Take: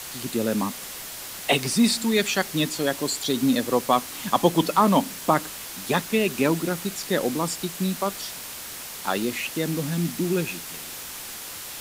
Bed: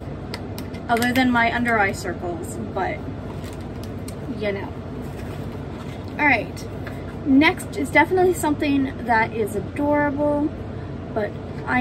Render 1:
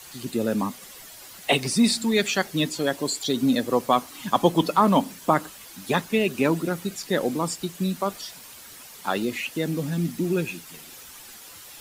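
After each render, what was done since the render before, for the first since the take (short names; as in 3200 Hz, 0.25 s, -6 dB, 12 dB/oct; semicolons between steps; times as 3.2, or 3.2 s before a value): denoiser 10 dB, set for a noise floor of -37 dBFS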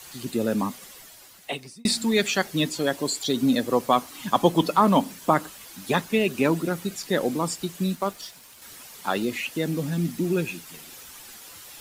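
0.75–1.85 fade out linear; 7.95–8.62 G.711 law mismatch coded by A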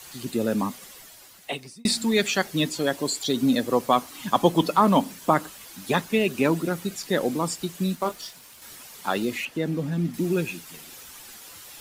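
7.99–8.76 doubler 23 ms -7.5 dB; 9.45–10.14 high shelf 4000 Hz -11.5 dB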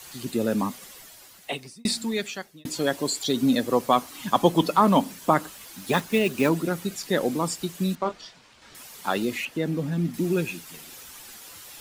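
1.66–2.65 fade out; 5.49–6.51 block floating point 5-bit; 7.95–8.75 air absorption 130 m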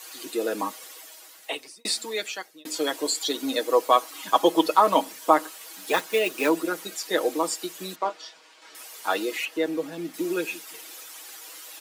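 HPF 330 Hz 24 dB/oct; comb 6.3 ms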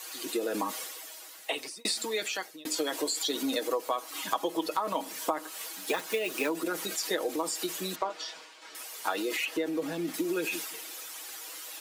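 transient shaper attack +2 dB, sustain +6 dB; compressor 8:1, threshold -27 dBFS, peak gain reduction 17 dB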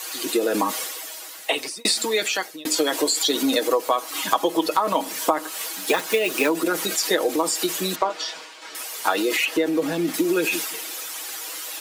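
gain +9.5 dB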